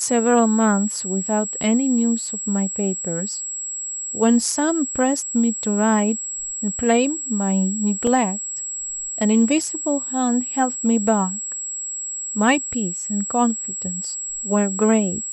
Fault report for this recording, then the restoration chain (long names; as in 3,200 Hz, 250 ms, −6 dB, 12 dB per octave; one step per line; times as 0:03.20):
whistle 7,700 Hz −26 dBFS
0:08.07: drop-out 2.1 ms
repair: notch filter 7,700 Hz, Q 30
repair the gap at 0:08.07, 2.1 ms